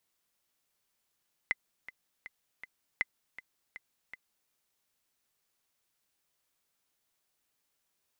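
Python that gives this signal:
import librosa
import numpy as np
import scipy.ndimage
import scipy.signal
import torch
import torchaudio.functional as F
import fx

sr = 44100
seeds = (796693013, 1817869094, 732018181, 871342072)

y = fx.click_track(sr, bpm=160, beats=4, bars=2, hz=2040.0, accent_db=16.5, level_db=-15.0)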